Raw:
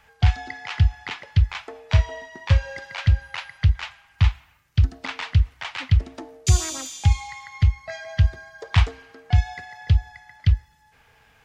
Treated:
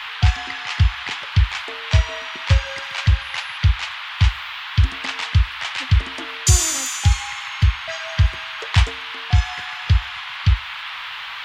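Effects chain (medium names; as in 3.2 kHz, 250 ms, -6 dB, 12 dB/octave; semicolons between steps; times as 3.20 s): treble shelf 4.8 kHz +12 dB; band noise 910–3500 Hz -33 dBFS; trim +1.5 dB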